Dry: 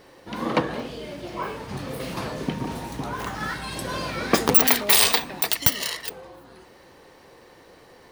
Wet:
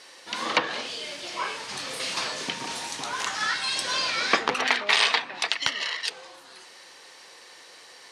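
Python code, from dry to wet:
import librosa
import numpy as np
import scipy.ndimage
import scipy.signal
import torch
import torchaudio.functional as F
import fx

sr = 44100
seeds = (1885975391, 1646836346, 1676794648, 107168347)

y = fx.weighting(x, sr, curve='ITU-R 468')
y = fx.env_lowpass_down(y, sr, base_hz=2000.0, full_db=-15.5)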